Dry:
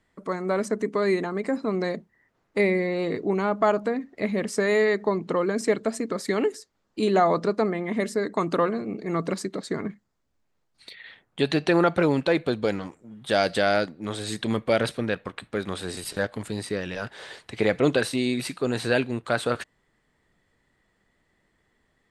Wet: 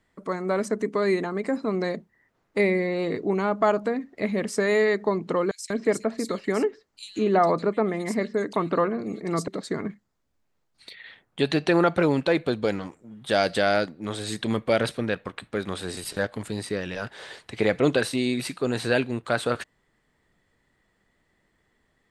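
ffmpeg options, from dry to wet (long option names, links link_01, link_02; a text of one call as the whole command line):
ffmpeg -i in.wav -filter_complex "[0:a]asettb=1/sr,asplit=3[link_01][link_02][link_03];[link_01]atrim=end=5.514[link_04];[link_02]atrim=start=5.51:end=9.48,asetpts=PTS-STARTPTS,afade=type=in:duration=0.004:curve=qsin,afade=type=out:start_time=3.966:duration=0.004:curve=qsin,acrossover=split=3200[link_05][link_06];[link_05]adelay=190[link_07];[link_07][link_06]amix=inputs=2:normalize=0,atrim=end_sample=175077[link_08];[link_03]atrim=start=9.476[link_09];[link_04][link_08]acrossfade=duration=0.004:curve1=hsin:curve2=qsin[link_10];[link_10][link_09]acrossfade=duration=0.004:curve1=qsin:curve2=hsin" out.wav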